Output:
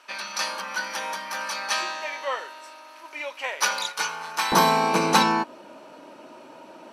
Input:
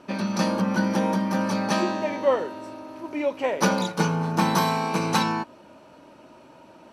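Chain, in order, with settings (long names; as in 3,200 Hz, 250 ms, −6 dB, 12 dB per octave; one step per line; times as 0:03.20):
high-pass filter 1,400 Hz 12 dB per octave, from 0:04.52 260 Hz
level +5 dB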